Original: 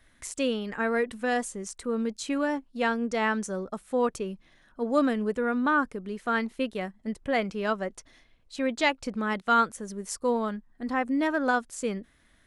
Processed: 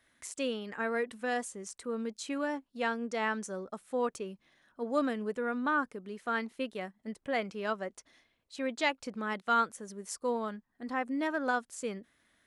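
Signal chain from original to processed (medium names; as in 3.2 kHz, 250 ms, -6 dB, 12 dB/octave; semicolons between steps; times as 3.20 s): high-pass 220 Hz 6 dB/octave; trim -5 dB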